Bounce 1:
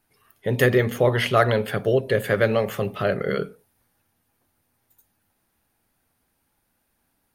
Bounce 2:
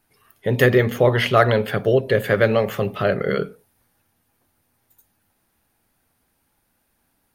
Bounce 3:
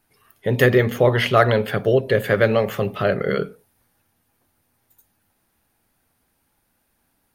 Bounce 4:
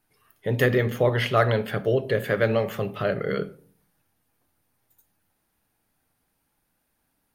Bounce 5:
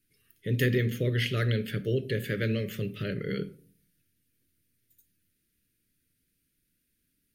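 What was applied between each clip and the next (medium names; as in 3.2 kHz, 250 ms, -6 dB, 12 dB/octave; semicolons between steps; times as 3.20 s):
dynamic bell 9.3 kHz, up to -6 dB, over -54 dBFS, Q 1.2; trim +3 dB
no audible change
simulated room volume 460 m³, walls furnished, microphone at 0.46 m; trim -5.5 dB
Butterworth band-stop 860 Hz, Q 0.53; trim -1.5 dB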